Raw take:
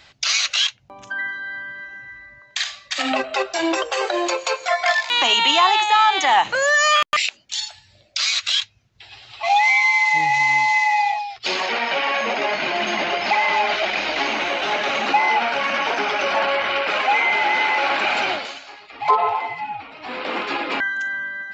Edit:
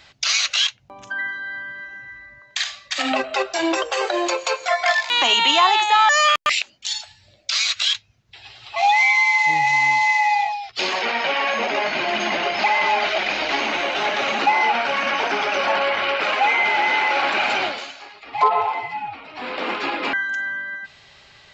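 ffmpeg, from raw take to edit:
-filter_complex "[0:a]asplit=2[s0][s1];[s0]atrim=end=6.092[s2];[s1]atrim=start=6.758[s3];[s2][s3]acrossfade=d=0.004:c1=hsin:c2=hsin"

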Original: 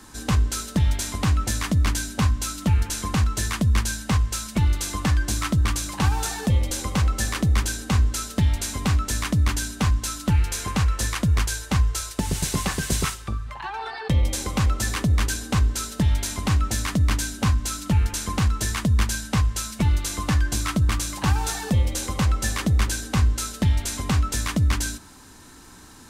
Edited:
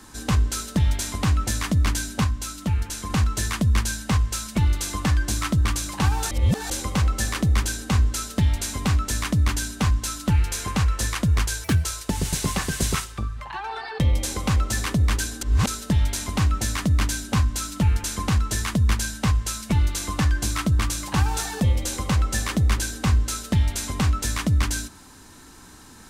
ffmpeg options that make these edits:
-filter_complex "[0:a]asplit=9[s0][s1][s2][s3][s4][s5][s6][s7][s8];[s0]atrim=end=2.242[s9];[s1]atrim=start=2.238:end=3.102,asetpts=PTS-STARTPTS,volume=0.668[s10];[s2]atrim=start=3.098:end=6.312[s11];[s3]atrim=start=6.308:end=6.702,asetpts=PTS-STARTPTS,areverse[s12];[s4]atrim=start=6.698:end=11.644[s13];[s5]atrim=start=11.64:end=11.94,asetpts=PTS-STARTPTS,asetrate=65268,aresample=44100,atrim=end_sample=8939,asetpts=PTS-STARTPTS[s14];[s6]atrim=start=11.936:end=15.512[s15];[s7]atrim=start=15.508:end=15.772,asetpts=PTS-STARTPTS,areverse[s16];[s8]atrim=start=15.768[s17];[s9][s10]acrossfade=d=0.004:c1=hsin:c2=hsin[s18];[s18][s11]acrossfade=d=0.004:c1=hsin:c2=hsin[s19];[s19][s12]acrossfade=d=0.004:c1=hsin:c2=hsin[s20];[s20][s13]acrossfade=d=0.004:c1=hsin:c2=hsin[s21];[s21][s14]acrossfade=d=0.004:c1=hsin:c2=hsin[s22];[s22][s15]acrossfade=d=0.004:c1=hsin:c2=hsin[s23];[s23][s16]acrossfade=d=0.004:c1=hsin:c2=hsin[s24];[s24][s17]acrossfade=d=0.004:c1=hsin:c2=hsin"

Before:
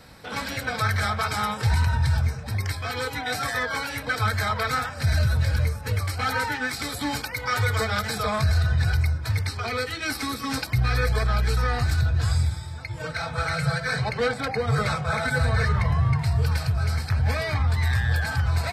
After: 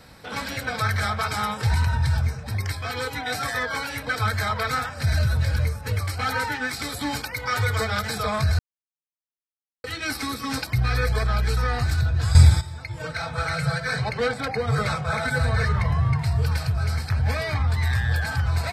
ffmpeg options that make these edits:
-filter_complex "[0:a]asplit=5[s0][s1][s2][s3][s4];[s0]atrim=end=8.59,asetpts=PTS-STARTPTS,afade=t=out:st=8.586:d=0.004:c=hsin[s5];[s1]atrim=start=8.59:end=9.84,asetpts=PTS-STARTPTS,volume=0[s6];[s2]atrim=start=9.84:end=12.352,asetpts=PTS-STARTPTS,afade=t=in:d=0.004:c=hsin[s7];[s3]atrim=start=12.348:end=12.612,asetpts=PTS-STARTPTS,volume=3.55[s8];[s4]atrim=start=12.608[s9];[s5][s6][s7]concat=n=3:v=0:a=1[s10];[s10][s8]acrossfade=d=0.004:c1=hsin:c2=hsin[s11];[s11][s9]acrossfade=d=0.004:c1=hsin:c2=hsin"

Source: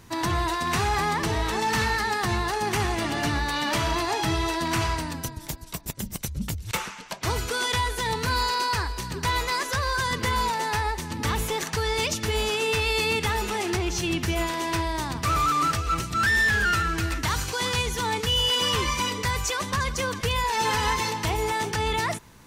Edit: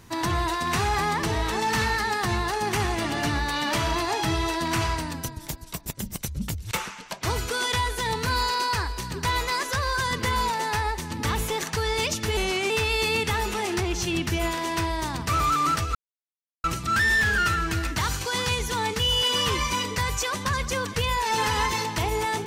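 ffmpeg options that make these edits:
-filter_complex "[0:a]asplit=4[s0][s1][s2][s3];[s0]atrim=end=12.374[s4];[s1]atrim=start=12.37:end=12.66,asetpts=PTS-STARTPTS,asetrate=38808,aresample=44100[s5];[s2]atrim=start=12.656:end=15.91,asetpts=PTS-STARTPTS,afade=t=out:st=3.25:d=0.004:c=hsin,apad=pad_dur=0.69[s6];[s3]atrim=start=15.91,asetpts=PTS-STARTPTS,afade=t=in:d=0.004:c=hsin[s7];[s4][s5]acrossfade=d=0.004:c1=hsin:c2=hsin[s8];[s6][s7]concat=n=2:v=0:a=1[s9];[s8][s9]acrossfade=d=0.004:c1=hsin:c2=hsin"

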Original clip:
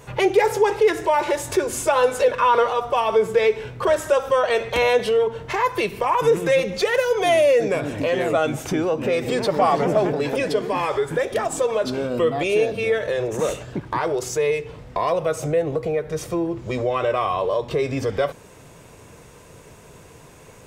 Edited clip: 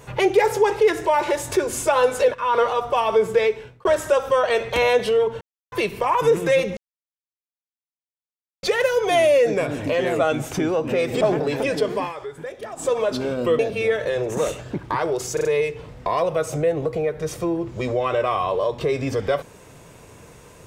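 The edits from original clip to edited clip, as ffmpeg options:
-filter_complex "[0:a]asplit=13[s0][s1][s2][s3][s4][s5][s6][s7][s8][s9][s10][s11][s12];[s0]atrim=end=2.34,asetpts=PTS-STARTPTS,afade=t=out:st=2.336:d=0.004:c=hsin:silence=0.199526[s13];[s1]atrim=start=2.34:end=3.85,asetpts=PTS-STARTPTS,afade=t=in:d=0.29:silence=0.199526,afade=t=out:st=1.04:d=0.47[s14];[s2]atrim=start=3.85:end=5.41,asetpts=PTS-STARTPTS,afade=t=in:d=0.004:c=hsin,afade=t=out:st=1.556:d=0.004:c=hsin[s15];[s3]atrim=start=5.41:end=5.72,asetpts=PTS-STARTPTS,volume=0[s16];[s4]atrim=start=5.72:end=6.77,asetpts=PTS-STARTPTS,afade=t=in:d=0.004:c=hsin,afade=t=out:st=1.046:d=0.004:c=hsin,apad=pad_dur=1.86[s17];[s5]atrim=start=6.77:end=9.352,asetpts=PTS-STARTPTS,afade=t=in:d=0.004:c=hsin[s18];[s6]atrim=start=9.938:end=10.85,asetpts=PTS-STARTPTS,afade=t=out:st=0.772:d=0.14:silence=0.281838[s19];[s7]atrim=start=10.85:end=11.48,asetpts=PTS-STARTPTS,volume=0.282[s20];[s8]atrim=start=11.48:end=12.322,asetpts=PTS-STARTPTS,afade=t=in:d=0.14:silence=0.281838[s21];[s9]atrim=start=12.608:end=14.392[s22];[s10]atrim=start=14.348:end=14.392[s23];[s11]atrim=start=14.348:end=14.392[s24];[s12]atrim=start=14.348[s25];[s13][s14][s15][s16][s17][s18]concat=n=6:v=0:a=1[s26];[s19][s20][s21]concat=n=3:v=0:a=1[s27];[s26][s27]acrossfade=d=0.004:c1=hsin:c2=hsin[s28];[s28][s22]acrossfade=d=0.004:c1=hsin:c2=hsin[s29];[s29][s23]acrossfade=d=0.004:c1=hsin:c2=hsin[s30];[s30][s24]acrossfade=d=0.004:c1=hsin:c2=hsin[s31];[s31][s25]acrossfade=d=0.004:c1=hsin:c2=hsin"

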